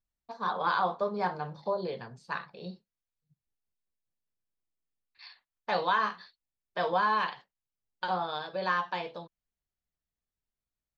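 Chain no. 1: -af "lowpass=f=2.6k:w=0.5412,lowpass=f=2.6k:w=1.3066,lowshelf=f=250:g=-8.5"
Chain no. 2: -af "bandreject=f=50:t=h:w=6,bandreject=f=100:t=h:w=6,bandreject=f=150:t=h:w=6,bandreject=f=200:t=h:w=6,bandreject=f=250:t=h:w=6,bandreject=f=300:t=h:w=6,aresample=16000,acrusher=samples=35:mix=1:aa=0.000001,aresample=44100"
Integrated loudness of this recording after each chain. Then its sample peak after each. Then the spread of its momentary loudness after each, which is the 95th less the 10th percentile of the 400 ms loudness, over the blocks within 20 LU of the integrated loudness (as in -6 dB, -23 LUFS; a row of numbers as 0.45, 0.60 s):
-32.5, -33.5 LUFS; -17.0, -15.5 dBFS; 19, 16 LU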